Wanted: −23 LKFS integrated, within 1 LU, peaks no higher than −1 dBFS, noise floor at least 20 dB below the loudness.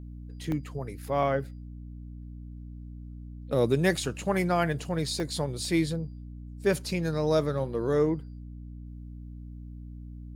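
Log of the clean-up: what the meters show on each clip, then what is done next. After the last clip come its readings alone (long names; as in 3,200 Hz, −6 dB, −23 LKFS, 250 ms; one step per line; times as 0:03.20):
number of dropouts 2; longest dropout 1.1 ms; mains hum 60 Hz; hum harmonics up to 300 Hz; level of the hum −39 dBFS; integrated loudness −28.5 LKFS; sample peak −10.0 dBFS; target loudness −23.0 LKFS
→ repair the gap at 0:00.52/0:05.20, 1.1 ms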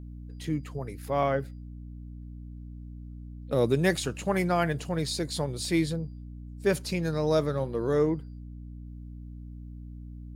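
number of dropouts 0; mains hum 60 Hz; hum harmonics up to 300 Hz; level of the hum −39 dBFS
→ hum removal 60 Hz, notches 5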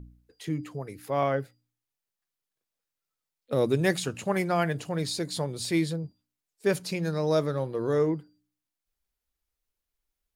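mains hum none found; integrated loudness −28.5 LKFS; sample peak −10.0 dBFS; target loudness −23.0 LKFS
→ level +5.5 dB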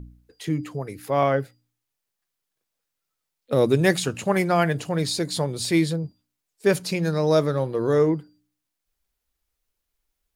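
integrated loudness −23.0 LKFS; sample peak −4.5 dBFS; background noise floor −82 dBFS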